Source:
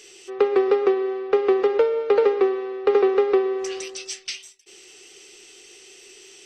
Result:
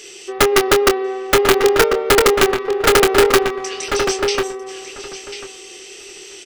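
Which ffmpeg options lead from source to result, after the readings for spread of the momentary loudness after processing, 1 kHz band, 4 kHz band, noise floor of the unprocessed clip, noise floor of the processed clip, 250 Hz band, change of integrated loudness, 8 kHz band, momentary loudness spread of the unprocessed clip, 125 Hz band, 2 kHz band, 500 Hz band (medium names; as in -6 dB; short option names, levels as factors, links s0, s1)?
21 LU, +10.5 dB, +16.5 dB, -49 dBFS, -38 dBFS, +5.0 dB, +6.0 dB, +15.5 dB, 13 LU, no reading, +16.5 dB, +4.0 dB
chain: -filter_complex "[0:a]asplit=2[s0][s1];[s1]acompressor=threshold=0.0282:ratio=16,volume=0.708[s2];[s0][s2]amix=inputs=2:normalize=0,aeval=exprs='(mod(2.99*val(0)+1,2)-1)/2.99':c=same,asplit=2[s3][s4];[s4]adelay=25,volume=0.422[s5];[s3][s5]amix=inputs=2:normalize=0,asplit=2[s6][s7];[s7]adelay=1044,lowpass=f=2700:p=1,volume=0.531,asplit=2[s8][s9];[s9]adelay=1044,lowpass=f=2700:p=1,volume=0.16,asplit=2[s10][s11];[s11]adelay=1044,lowpass=f=2700:p=1,volume=0.16[s12];[s6][s8][s10][s12]amix=inputs=4:normalize=0,volume=1.58"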